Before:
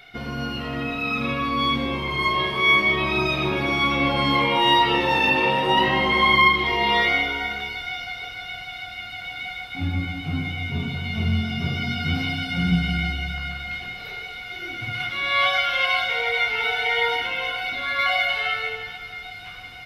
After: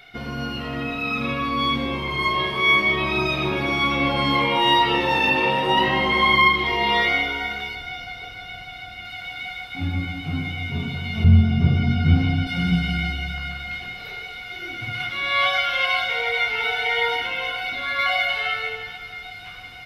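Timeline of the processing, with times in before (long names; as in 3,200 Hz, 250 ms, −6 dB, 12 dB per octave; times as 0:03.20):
0:07.75–0:09.05: tilt shelving filter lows +3.5 dB, about 680 Hz
0:11.24–0:12.47: spectral tilt −3 dB per octave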